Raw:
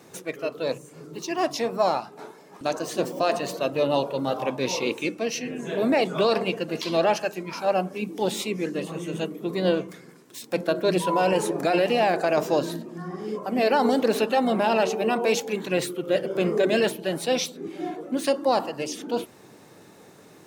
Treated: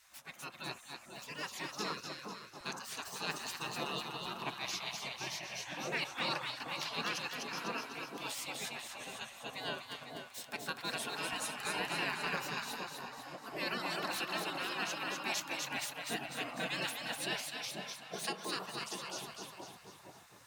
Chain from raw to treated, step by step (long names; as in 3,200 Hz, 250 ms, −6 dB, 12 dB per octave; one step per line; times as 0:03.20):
echo with a time of its own for lows and highs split 790 Hz, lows 465 ms, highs 249 ms, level −4 dB
gate on every frequency bin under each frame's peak −15 dB weak
level −6.5 dB